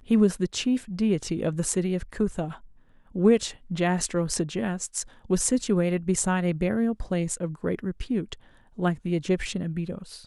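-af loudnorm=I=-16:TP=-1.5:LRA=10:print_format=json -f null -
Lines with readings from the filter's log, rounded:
"input_i" : "-27.1",
"input_tp" : "-7.7",
"input_lra" : "4.6",
"input_thresh" : "-37.5",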